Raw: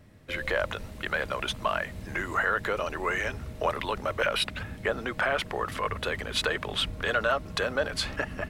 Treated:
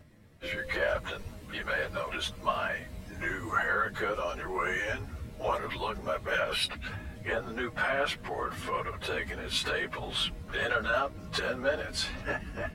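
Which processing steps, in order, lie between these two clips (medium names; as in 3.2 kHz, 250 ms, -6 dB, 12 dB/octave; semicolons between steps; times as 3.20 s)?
plain phase-vocoder stretch 1.5×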